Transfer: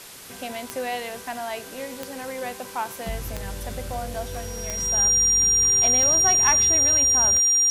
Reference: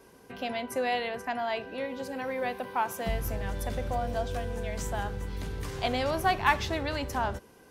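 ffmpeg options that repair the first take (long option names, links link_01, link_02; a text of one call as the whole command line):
ffmpeg -i in.wav -af "adeclick=threshold=4,bandreject=frequency=5700:width=30,afwtdn=0.0089" out.wav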